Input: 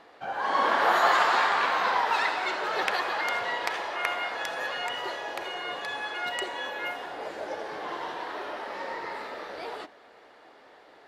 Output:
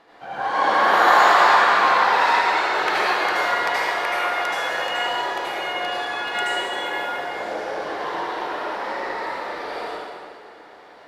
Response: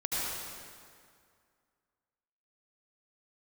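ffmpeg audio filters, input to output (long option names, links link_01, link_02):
-filter_complex "[1:a]atrim=start_sample=2205[link_01];[0:a][link_01]afir=irnorm=-1:irlink=0"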